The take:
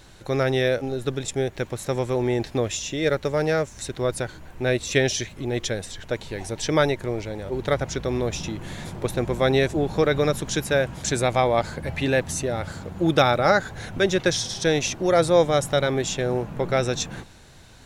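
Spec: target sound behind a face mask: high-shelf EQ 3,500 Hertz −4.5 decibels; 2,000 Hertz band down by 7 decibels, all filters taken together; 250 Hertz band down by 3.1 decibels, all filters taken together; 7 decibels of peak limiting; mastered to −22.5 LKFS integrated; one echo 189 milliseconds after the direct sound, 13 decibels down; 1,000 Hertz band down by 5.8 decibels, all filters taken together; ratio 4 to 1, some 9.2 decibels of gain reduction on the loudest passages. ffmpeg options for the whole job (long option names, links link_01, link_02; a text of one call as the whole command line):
ffmpeg -i in.wav -af "equalizer=frequency=250:width_type=o:gain=-4,equalizer=frequency=1000:width_type=o:gain=-6.5,equalizer=frequency=2000:width_type=o:gain=-5.5,acompressor=threshold=-27dB:ratio=4,alimiter=limit=-23.5dB:level=0:latency=1,highshelf=frequency=3500:gain=-4.5,aecho=1:1:189:0.224,volume=11.5dB" out.wav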